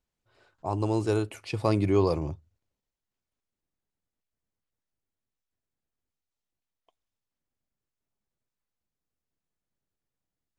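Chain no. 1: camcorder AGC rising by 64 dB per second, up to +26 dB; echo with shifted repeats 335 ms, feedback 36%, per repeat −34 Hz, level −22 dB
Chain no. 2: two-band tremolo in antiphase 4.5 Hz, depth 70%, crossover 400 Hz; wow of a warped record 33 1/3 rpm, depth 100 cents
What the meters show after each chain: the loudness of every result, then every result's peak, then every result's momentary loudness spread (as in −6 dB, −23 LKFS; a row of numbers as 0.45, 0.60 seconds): −27.0, −31.0 LKFS; −7.5, −13.5 dBFS; 12, 12 LU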